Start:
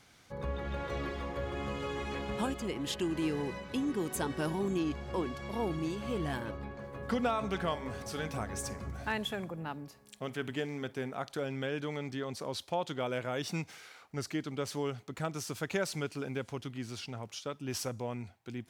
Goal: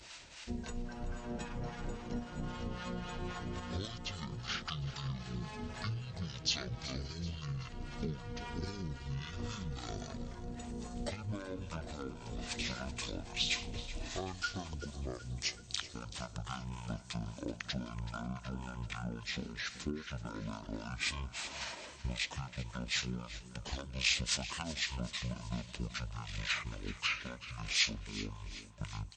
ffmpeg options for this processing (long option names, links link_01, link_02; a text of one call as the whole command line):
ffmpeg -i in.wav -filter_complex "[0:a]acompressor=threshold=-41dB:ratio=16,bass=frequency=250:gain=1,treble=frequency=4000:gain=5,agate=range=-33dB:threshold=-56dB:ratio=3:detection=peak,acompressor=mode=upward:threshold=-57dB:ratio=2.5,aemphasis=mode=production:type=50fm,atempo=1.5,acrossover=split=1600[link_01][link_02];[link_01]aeval=exprs='val(0)*(1-0.7/2+0.7/2*cos(2*PI*8.7*n/s))':channel_layout=same[link_03];[link_02]aeval=exprs='val(0)*(1-0.7/2-0.7/2*cos(2*PI*8.7*n/s))':channel_layout=same[link_04];[link_03][link_04]amix=inputs=2:normalize=0,aecho=1:1:162|324|486|648|810|972:0.178|0.103|0.0598|0.0347|0.0201|0.0117,asetrate=18846,aresample=44100,volume=7dB" out.wav